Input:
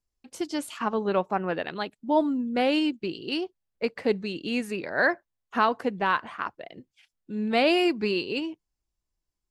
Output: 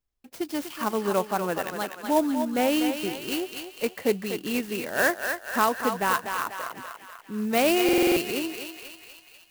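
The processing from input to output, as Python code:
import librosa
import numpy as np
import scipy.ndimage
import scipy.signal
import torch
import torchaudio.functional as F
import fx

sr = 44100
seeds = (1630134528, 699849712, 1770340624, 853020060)

p1 = x + fx.echo_thinned(x, sr, ms=245, feedback_pct=61, hz=630.0, wet_db=-5, dry=0)
p2 = fx.buffer_glitch(p1, sr, at_s=(7.84,), block=2048, repeats=6)
y = fx.clock_jitter(p2, sr, seeds[0], jitter_ms=0.037)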